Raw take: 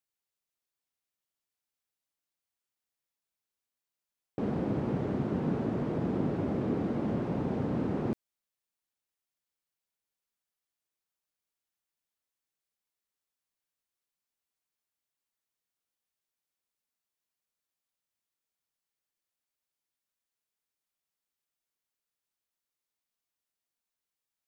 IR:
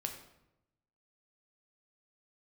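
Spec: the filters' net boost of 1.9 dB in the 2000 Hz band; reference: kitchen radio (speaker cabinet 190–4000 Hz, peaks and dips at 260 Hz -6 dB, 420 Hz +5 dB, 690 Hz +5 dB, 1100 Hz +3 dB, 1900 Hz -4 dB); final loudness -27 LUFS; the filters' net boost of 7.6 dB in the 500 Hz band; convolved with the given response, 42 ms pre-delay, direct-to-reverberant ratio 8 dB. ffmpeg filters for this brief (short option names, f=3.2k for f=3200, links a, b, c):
-filter_complex "[0:a]equalizer=f=500:t=o:g=5.5,equalizer=f=2k:t=o:g=4,asplit=2[a][b];[1:a]atrim=start_sample=2205,adelay=42[c];[b][c]afir=irnorm=-1:irlink=0,volume=-8dB[d];[a][d]amix=inputs=2:normalize=0,highpass=190,equalizer=f=260:t=q:w=4:g=-6,equalizer=f=420:t=q:w=4:g=5,equalizer=f=690:t=q:w=4:g=5,equalizer=f=1.1k:t=q:w=4:g=3,equalizer=f=1.9k:t=q:w=4:g=-4,lowpass=f=4k:w=0.5412,lowpass=f=4k:w=1.3066,volume=2.5dB"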